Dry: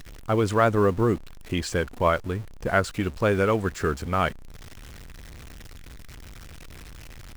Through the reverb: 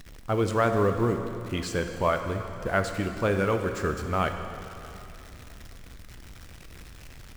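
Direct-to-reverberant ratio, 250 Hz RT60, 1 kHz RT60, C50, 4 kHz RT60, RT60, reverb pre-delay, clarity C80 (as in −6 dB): 5.5 dB, 2.9 s, 2.9 s, 7.0 dB, 2.7 s, 2.9 s, 6 ms, 7.5 dB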